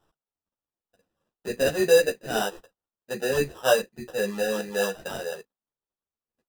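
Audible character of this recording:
phaser sweep stages 4, 1.7 Hz, lowest notch 800–2,200 Hz
aliases and images of a low sample rate 2,200 Hz, jitter 0%
a shimmering, thickened sound

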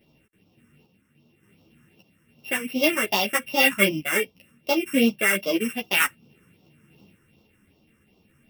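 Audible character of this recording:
a buzz of ramps at a fixed pitch in blocks of 16 samples
phaser sweep stages 4, 2.6 Hz, lowest notch 700–1,700 Hz
sample-and-hold tremolo
a shimmering, thickened sound

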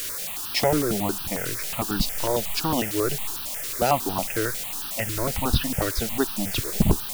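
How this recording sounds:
a quantiser's noise floor 6 bits, dither triangular
notches that jump at a steady rate 11 Hz 210–2,100 Hz

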